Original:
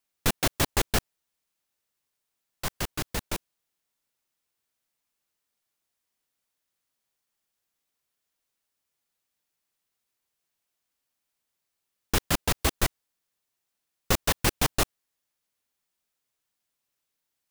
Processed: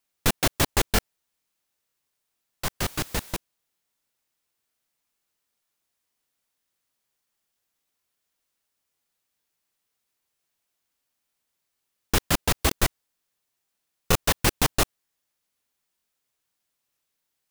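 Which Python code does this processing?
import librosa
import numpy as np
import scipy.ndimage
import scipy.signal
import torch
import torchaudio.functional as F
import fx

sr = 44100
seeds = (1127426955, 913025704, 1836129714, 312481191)

y = fx.zero_step(x, sr, step_db=-42.0, at=(2.82, 3.34))
y = fx.buffer_crackle(y, sr, first_s=0.94, period_s=0.47, block=1024, kind='repeat')
y = y * librosa.db_to_amplitude(2.5)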